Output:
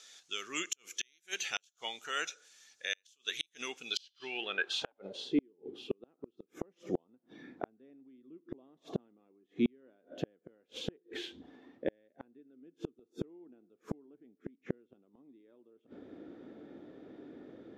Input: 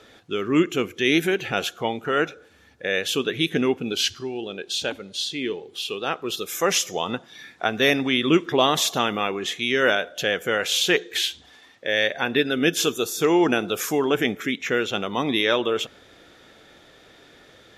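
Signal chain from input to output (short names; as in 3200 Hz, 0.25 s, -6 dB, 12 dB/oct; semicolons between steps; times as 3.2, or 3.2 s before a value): band-pass sweep 6500 Hz -> 280 Hz, 3.81–5.51; flipped gate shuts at -28 dBFS, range -41 dB; gain +9 dB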